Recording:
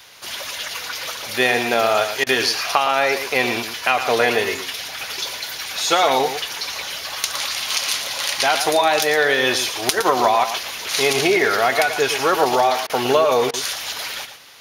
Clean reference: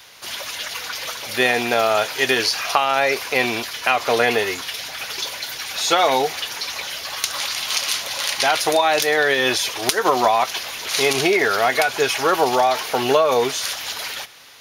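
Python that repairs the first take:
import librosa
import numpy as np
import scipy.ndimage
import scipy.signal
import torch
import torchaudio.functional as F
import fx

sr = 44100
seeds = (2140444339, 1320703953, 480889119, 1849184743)

y = fx.fix_interpolate(x, sr, at_s=(2.24, 12.87, 13.51), length_ms=25.0)
y = fx.fix_echo_inverse(y, sr, delay_ms=114, level_db=-9.5)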